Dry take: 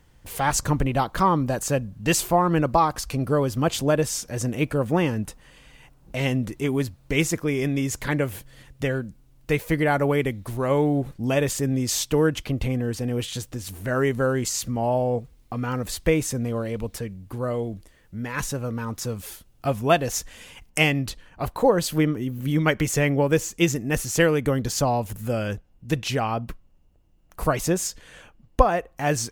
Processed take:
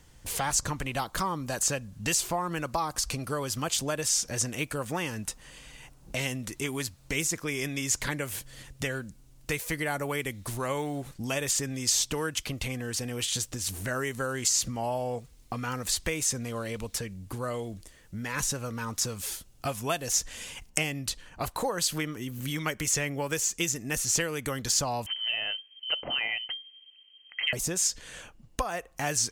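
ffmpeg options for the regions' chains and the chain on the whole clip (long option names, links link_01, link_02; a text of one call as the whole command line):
ffmpeg -i in.wav -filter_complex "[0:a]asettb=1/sr,asplit=3[link_01][link_02][link_03];[link_01]atrim=end=25.064[link_04];[link_02]atrim=start=25.06:end=27.53,asetpts=PTS-STARTPTS,afade=type=in:duration=0.004:curve=qsin,afade=type=out:start_time=2.466:duration=0.004:curve=qsin,equalizer=frequency=1200:width=6.4:gain=11.5,lowpass=frequency=2700:width_type=q:width=0.5098,lowpass=frequency=2700:width_type=q:width=0.6013,lowpass=frequency=2700:width_type=q:width=0.9,lowpass=frequency=2700:width_type=q:width=2.563,afreqshift=-3200[link_05];[link_03]atrim=start=27.526[link_06];[link_04][link_05]acrossfade=duration=0.004:curve1=hsin:curve2=qsin[link_07];[link_07][link_06]acrossfade=duration=0.004:curve1=qsin:curve2=hsin,acrossover=split=890|6700[link_08][link_09][link_10];[link_08]acompressor=threshold=-34dB:ratio=4[link_11];[link_09]acompressor=threshold=-33dB:ratio=4[link_12];[link_10]acompressor=threshold=-40dB:ratio=4[link_13];[link_11][link_12][link_13]amix=inputs=3:normalize=0,equalizer=frequency=7300:width_type=o:width=1.8:gain=8.5" out.wav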